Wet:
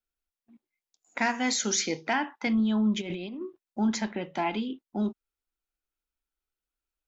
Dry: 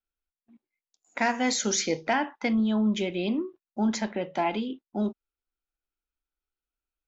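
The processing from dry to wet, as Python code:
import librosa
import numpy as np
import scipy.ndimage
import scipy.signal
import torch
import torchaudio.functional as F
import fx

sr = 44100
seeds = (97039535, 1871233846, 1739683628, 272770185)

y = fx.highpass(x, sr, hz=150.0, slope=6, at=(1.27, 2.47))
y = fx.over_compress(y, sr, threshold_db=-36.0, ratio=-1.0, at=(3.0, 3.41), fade=0.02)
y = fx.dynamic_eq(y, sr, hz=560.0, q=2.1, threshold_db=-43.0, ratio=4.0, max_db=-7)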